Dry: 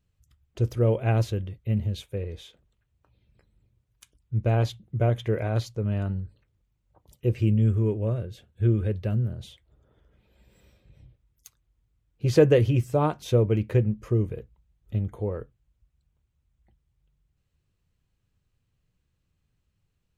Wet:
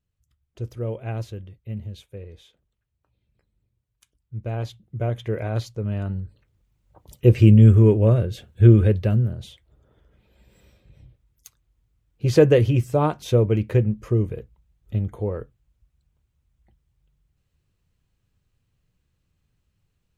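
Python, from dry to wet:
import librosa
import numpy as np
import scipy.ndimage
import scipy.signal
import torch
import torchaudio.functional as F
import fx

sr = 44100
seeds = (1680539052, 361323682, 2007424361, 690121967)

y = fx.gain(x, sr, db=fx.line((4.37, -6.5), (5.46, 0.5), (6.01, 0.5), (7.26, 10.0), (8.79, 10.0), (9.41, 3.0)))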